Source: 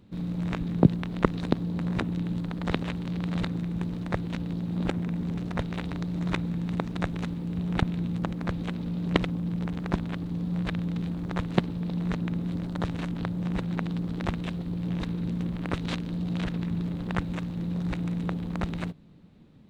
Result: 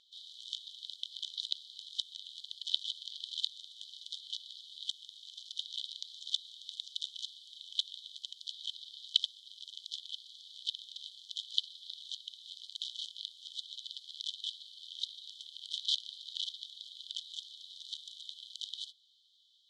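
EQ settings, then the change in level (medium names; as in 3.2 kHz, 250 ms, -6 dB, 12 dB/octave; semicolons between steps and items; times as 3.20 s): brick-wall FIR high-pass 3 kHz; low-pass 4.8 kHz 12 dB/octave; +11.5 dB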